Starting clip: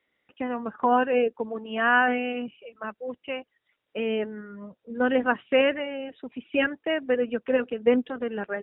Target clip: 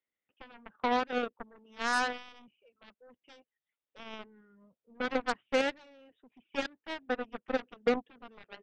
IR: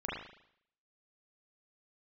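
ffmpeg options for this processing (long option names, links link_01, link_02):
-filter_complex "[0:a]acrossover=split=2800[link_01][link_02];[link_02]acompressor=threshold=-48dB:ratio=4:attack=1:release=60[link_03];[link_01][link_03]amix=inputs=2:normalize=0,aeval=exprs='0.355*(cos(1*acos(clip(val(0)/0.355,-1,1)))-cos(1*PI/2))+0.00631*(cos(4*acos(clip(val(0)/0.355,-1,1)))-cos(4*PI/2))+0.0631*(cos(7*acos(clip(val(0)/0.355,-1,1)))-cos(7*PI/2))':channel_layout=same,volume=-7.5dB"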